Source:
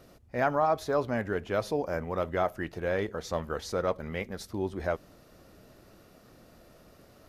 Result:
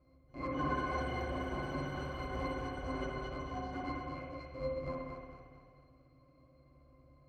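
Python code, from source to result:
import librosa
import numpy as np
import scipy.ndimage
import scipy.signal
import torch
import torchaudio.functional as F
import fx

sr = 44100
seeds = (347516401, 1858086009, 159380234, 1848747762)

p1 = fx.cycle_switch(x, sr, every=2, mode='inverted')
p2 = scipy.signal.sosfilt(scipy.signal.butter(2, 11000.0, 'lowpass', fs=sr, output='sos'), p1)
p3 = fx.octave_resonator(p2, sr, note='C', decay_s=0.13)
p4 = fx.echo_pitch(p3, sr, ms=287, semitones=6, count=3, db_per_echo=-6.0)
p5 = p4 + fx.echo_feedback(p4, sr, ms=226, feedback_pct=45, wet_db=-5, dry=0)
p6 = fx.rev_spring(p5, sr, rt60_s=1.2, pass_ms=(57,), chirp_ms=45, drr_db=0.0)
y = F.gain(torch.from_numpy(p6), -2.0).numpy()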